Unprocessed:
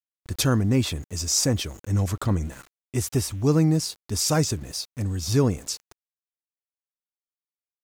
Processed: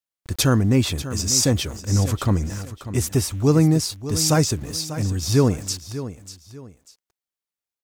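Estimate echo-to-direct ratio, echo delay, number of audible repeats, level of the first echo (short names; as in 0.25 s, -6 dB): -12.5 dB, 0.593 s, 2, -13.0 dB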